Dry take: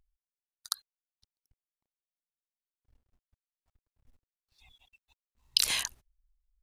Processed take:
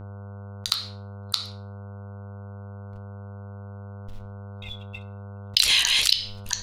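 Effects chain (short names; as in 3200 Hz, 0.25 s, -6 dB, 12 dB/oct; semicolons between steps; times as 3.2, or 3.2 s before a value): reverse delay 0.344 s, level -3.5 dB; low shelf 170 Hz +5.5 dB; gate -55 dBFS, range -54 dB; soft clip -16.5 dBFS, distortion -9 dB; bell 3400 Hz +13 dB 1.7 oct; buzz 100 Hz, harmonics 15, -60 dBFS -7 dB/oct; reverb RT60 0.35 s, pre-delay 8 ms, DRR 9.5 dB; fast leveller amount 50%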